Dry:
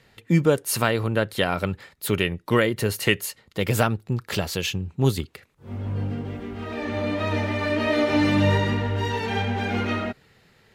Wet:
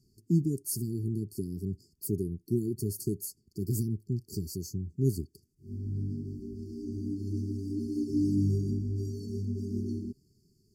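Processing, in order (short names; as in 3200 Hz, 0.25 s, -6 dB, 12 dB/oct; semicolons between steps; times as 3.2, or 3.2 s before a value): dynamic EQ 5100 Hz, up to -6 dB, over -47 dBFS, Q 1.5; brick-wall FIR band-stop 420–4400 Hz; gain -6 dB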